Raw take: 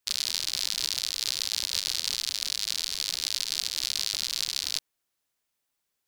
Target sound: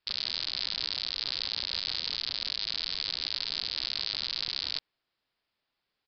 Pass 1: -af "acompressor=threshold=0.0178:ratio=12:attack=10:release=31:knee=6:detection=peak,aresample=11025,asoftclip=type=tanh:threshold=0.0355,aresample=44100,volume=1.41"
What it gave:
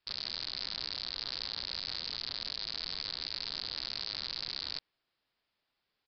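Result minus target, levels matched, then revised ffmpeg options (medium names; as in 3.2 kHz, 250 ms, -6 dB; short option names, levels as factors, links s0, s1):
saturation: distortion +9 dB
-af "acompressor=threshold=0.0178:ratio=12:attack=10:release=31:knee=6:detection=peak,aresample=11025,asoftclip=type=tanh:threshold=0.112,aresample=44100,volume=1.41"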